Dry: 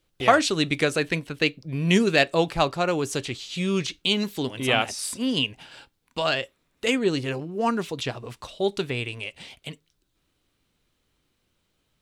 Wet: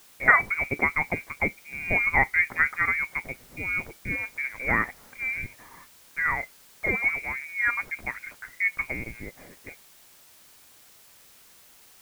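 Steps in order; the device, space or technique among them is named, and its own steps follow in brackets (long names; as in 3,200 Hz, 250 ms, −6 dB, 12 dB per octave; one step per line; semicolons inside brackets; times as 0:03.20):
scrambled radio voice (band-pass filter 330–3,200 Hz; voice inversion scrambler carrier 2,600 Hz; white noise bed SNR 25 dB)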